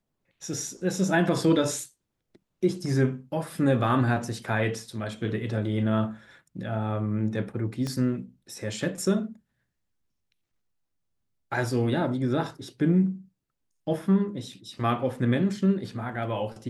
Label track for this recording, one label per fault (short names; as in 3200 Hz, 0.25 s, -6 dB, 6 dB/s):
7.870000	7.870000	pop -20 dBFS